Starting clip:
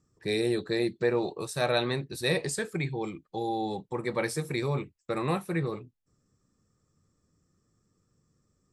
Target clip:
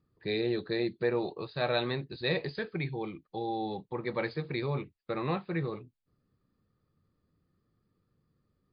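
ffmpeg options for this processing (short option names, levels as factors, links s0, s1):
-af "volume=0.75" -ar 11025 -c:a libmp3lame -b:a 56k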